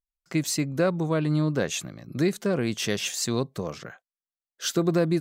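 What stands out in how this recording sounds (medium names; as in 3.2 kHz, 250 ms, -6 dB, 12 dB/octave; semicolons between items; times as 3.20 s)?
noise floor -96 dBFS; spectral tilt -5.0 dB/octave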